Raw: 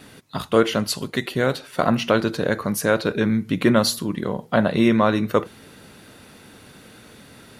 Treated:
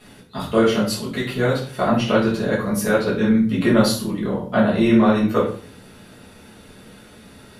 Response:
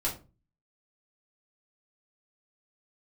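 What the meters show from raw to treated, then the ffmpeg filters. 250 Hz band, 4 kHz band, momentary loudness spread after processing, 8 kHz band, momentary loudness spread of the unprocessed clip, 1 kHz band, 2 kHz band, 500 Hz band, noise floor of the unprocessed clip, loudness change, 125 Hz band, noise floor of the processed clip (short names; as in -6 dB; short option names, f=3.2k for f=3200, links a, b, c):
+3.5 dB, -1.0 dB, 9 LU, -1.0 dB, 8 LU, +0.5 dB, 0.0 dB, +1.5 dB, -47 dBFS, +2.0 dB, +2.5 dB, -46 dBFS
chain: -filter_complex "[1:a]atrim=start_sample=2205,asetrate=27783,aresample=44100[a];[0:a][a]afir=irnorm=-1:irlink=0,volume=-8.5dB"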